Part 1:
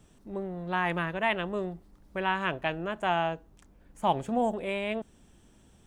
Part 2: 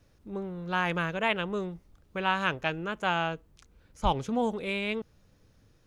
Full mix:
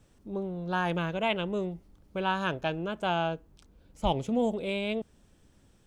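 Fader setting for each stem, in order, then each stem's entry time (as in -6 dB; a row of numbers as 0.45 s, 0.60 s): -5.5 dB, -3.0 dB; 0.00 s, 0.00 s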